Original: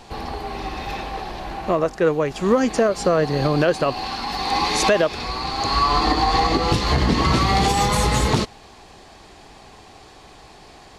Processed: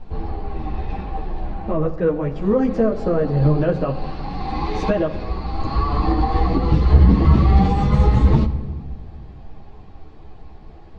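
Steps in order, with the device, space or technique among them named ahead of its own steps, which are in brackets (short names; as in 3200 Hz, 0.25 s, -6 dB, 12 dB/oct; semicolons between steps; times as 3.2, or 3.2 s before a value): tilt -4 dB/oct; string-machine ensemble chorus (ensemble effect; LPF 5000 Hz 12 dB/oct); shoebox room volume 1500 m³, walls mixed, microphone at 0.56 m; gain -3.5 dB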